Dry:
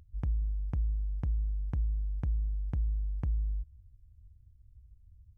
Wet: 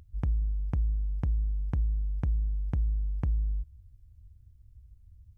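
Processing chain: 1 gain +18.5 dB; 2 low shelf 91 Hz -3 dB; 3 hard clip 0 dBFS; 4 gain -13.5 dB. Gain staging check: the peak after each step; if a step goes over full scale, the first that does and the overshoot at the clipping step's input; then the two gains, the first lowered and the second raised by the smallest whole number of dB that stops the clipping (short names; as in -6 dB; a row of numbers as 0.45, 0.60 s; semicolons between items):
-5.0, -5.0, -5.0, -18.5 dBFS; no overload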